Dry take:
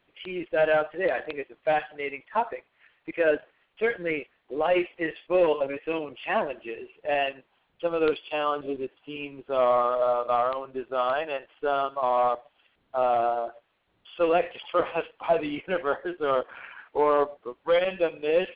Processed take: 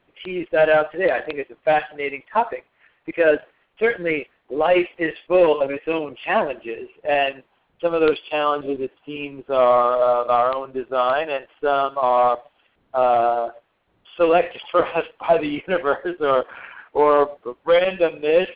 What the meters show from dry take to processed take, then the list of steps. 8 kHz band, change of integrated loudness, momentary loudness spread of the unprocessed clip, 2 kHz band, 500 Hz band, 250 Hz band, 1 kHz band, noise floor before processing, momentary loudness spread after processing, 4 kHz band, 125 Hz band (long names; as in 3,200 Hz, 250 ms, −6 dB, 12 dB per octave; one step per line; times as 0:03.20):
can't be measured, +6.5 dB, 12 LU, +6.5 dB, +6.5 dB, +6.5 dB, +6.5 dB, −70 dBFS, 13 LU, +6.0 dB, +6.5 dB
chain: one half of a high-frequency compander decoder only
level +6.5 dB